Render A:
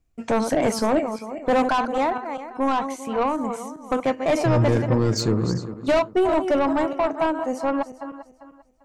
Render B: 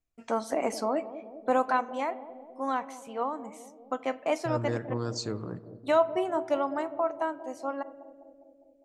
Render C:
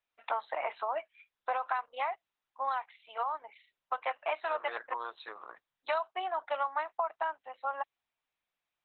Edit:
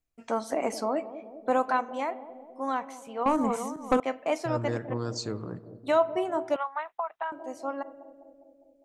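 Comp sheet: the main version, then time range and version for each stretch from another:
B
0:03.26–0:04.00: punch in from A
0:06.56–0:07.32: punch in from C

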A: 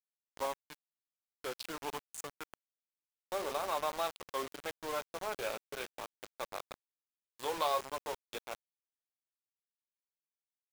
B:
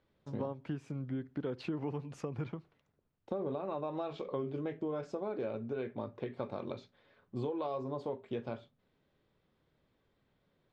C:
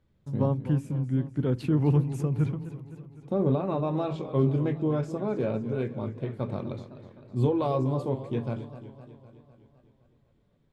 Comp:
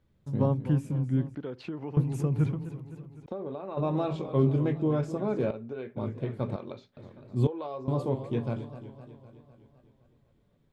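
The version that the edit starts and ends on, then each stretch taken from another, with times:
C
0:01.35–0:01.97: punch in from B
0:03.26–0:03.77: punch in from B
0:05.51–0:05.97: punch in from B
0:06.56–0:06.97: punch in from B
0:07.47–0:07.88: punch in from B
not used: A

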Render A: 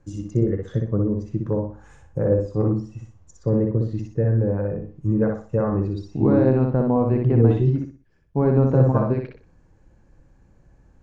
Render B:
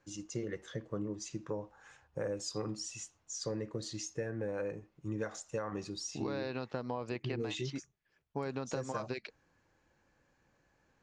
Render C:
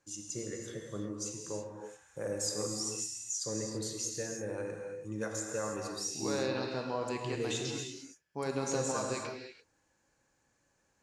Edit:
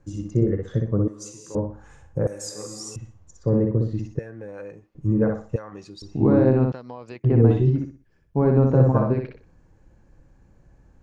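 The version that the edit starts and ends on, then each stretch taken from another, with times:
A
0:01.08–0:01.55: punch in from C
0:02.27–0:02.96: punch in from C
0:04.19–0:04.95: punch in from B
0:05.56–0:06.02: punch in from B
0:06.72–0:07.24: punch in from B

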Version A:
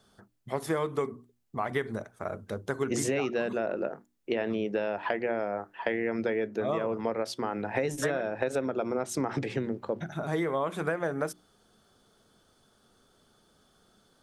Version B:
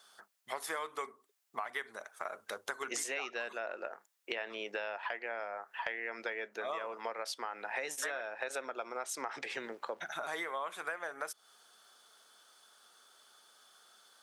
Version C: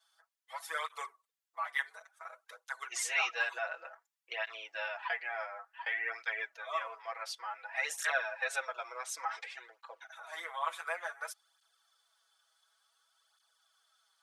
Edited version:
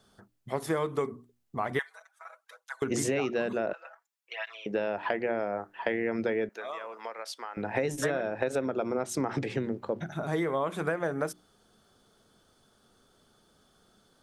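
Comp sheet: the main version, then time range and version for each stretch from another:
A
0:01.79–0:02.82: punch in from C
0:03.73–0:04.66: punch in from C
0:06.49–0:07.57: punch in from B

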